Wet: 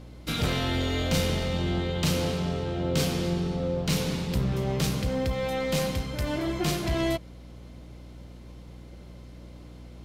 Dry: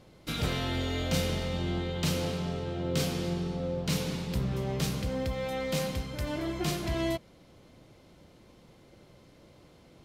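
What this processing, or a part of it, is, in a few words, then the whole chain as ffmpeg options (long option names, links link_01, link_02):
valve amplifier with mains hum: -af "aeval=exprs='(tanh(10*val(0)+0.25)-tanh(0.25))/10':channel_layout=same,aeval=exprs='val(0)+0.00355*(sin(2*PI*60*n/s)+sin(2*PI*2*60*n/s)/2+sin(2*PI*3*60*n/s)/3+sin(2*PI*4*60*n/s)/4+sin(2*PI*5*60*n/s)/5)':channel_layout=same,volume=5dB"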